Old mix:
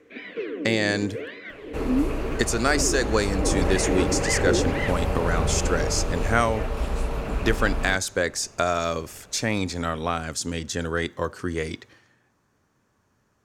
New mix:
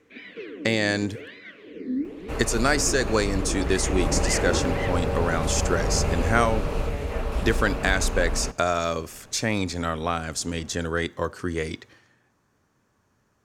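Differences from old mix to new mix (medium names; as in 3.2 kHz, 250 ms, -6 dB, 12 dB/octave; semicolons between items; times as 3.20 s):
first sound: add peaking EQ 670 Hz -8.5 dB 2.8 oct; second sound: entry +0.55 s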